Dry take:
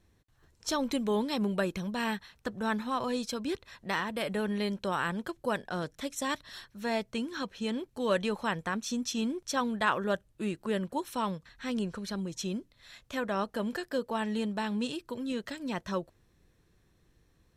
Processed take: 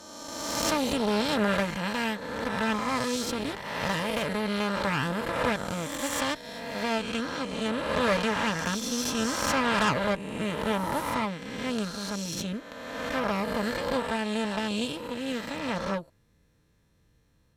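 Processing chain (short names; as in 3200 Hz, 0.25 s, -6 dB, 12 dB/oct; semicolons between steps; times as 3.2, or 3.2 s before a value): spectral swells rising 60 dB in 1.97 s; added harmonics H 8 -14 dB, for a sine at -7 dBFS; notch comb 370 Hz; gain -1.5 dB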